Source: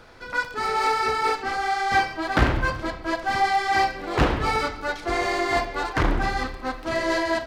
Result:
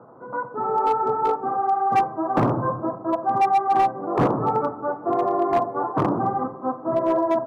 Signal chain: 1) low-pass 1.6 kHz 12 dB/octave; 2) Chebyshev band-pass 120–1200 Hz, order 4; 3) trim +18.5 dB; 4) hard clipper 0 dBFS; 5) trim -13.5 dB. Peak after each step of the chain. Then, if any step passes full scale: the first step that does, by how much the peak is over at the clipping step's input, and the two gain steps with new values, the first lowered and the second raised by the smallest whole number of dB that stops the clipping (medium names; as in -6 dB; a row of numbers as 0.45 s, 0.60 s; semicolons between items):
-6.5 dBFS, -10.0 dBFS, +8.5 dBFS, 0.0 dBFS, -13.5 dBFS; step 3, 8.5 dB; step 3 +9.5 dB, step 5 -4.5 dB